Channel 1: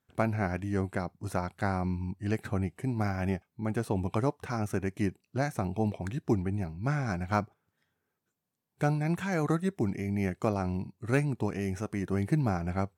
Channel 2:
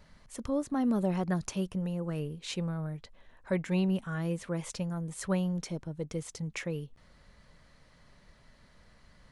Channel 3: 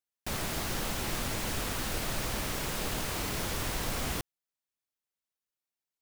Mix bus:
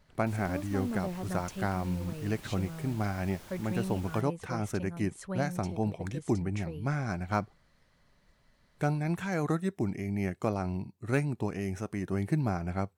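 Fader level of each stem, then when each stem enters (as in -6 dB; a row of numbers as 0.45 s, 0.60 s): -1.5 dB, -7.0 dB, -17.5 dB; 0.00 s, 0.00 s, 0.00 s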